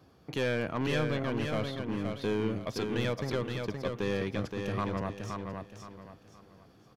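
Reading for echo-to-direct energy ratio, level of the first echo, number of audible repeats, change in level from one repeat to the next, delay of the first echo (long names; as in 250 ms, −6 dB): −4.5 dB, −5.0 dB, 4, −10.0 dB, 521 ms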